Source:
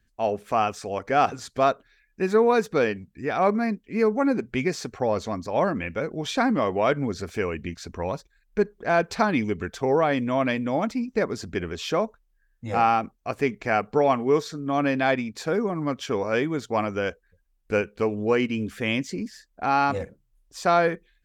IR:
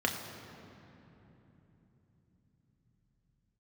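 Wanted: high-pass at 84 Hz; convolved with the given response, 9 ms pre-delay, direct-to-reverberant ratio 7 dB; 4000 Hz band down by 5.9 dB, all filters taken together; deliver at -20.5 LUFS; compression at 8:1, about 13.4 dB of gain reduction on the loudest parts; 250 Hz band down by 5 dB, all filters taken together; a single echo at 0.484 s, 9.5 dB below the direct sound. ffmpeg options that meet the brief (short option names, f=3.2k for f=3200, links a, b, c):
-filter_complex "[0:a]highpass=84,equalizer=f=250:t=o:g=-6,equalizer=f=4k:t=o:g=-8,acompressor=threshold=-31dB:ratio=8,aecho=1:1:484:0.335,asplit=2[a][b];[1:a]atrim=start_sample=2205,adelay=9[c];[b][c]afir=irnorm=-1:irlink=0,volume=-15.5dB[d];[a][d]amix=inputs=2:normalize=0,volume=14.5dB"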